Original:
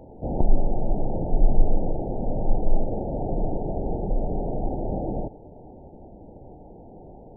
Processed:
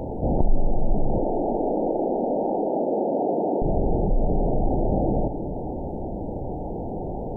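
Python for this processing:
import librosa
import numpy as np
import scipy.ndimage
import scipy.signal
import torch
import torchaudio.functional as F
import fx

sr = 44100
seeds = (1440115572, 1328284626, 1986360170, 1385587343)

y = fx.highpass(x, sr, hz=250.0, slope=24, at=(1.18, 3.62))
y = fx.echo_bbd(y, sr, ms=315, stages=1024, feedback_pct=43, wet_db=-18.5)
y = fx.env_flatten(y, sr, amount_pct=50)
y = y * librosa.db_to_amplitude(-3.0)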